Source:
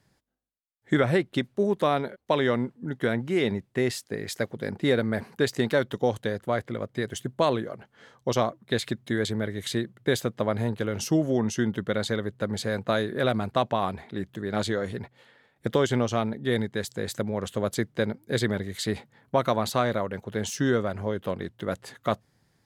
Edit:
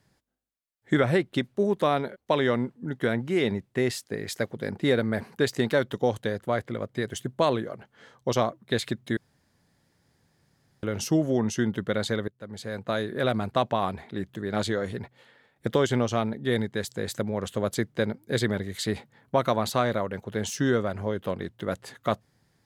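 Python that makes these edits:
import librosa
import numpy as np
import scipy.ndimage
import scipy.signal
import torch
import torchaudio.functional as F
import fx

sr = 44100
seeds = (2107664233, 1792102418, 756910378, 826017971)

y = fx.edit(x, sr, fx.room_tone_fill(start_s=9.17, length_s=1.66),
    fx.fade_in_from(start_s=12.28, length_s=1.36, curve='qsin', floor_db=-23.0), tone=tone)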